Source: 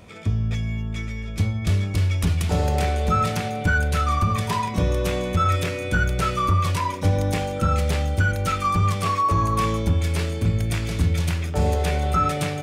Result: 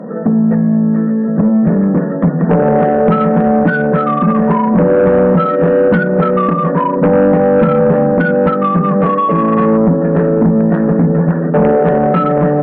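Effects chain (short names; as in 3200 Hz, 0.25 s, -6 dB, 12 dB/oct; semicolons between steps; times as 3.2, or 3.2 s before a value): FFT band-pass 140–1900 Hz; compressor 3:1, threshold -27 dBFS, peak gain reduction 8 dB; small resonant body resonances 230/480 Hz, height 16 dB, ringing for 20 ms; added harmonics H 5 -14 dB, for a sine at -4.5 dBFS; gain +3.5 dB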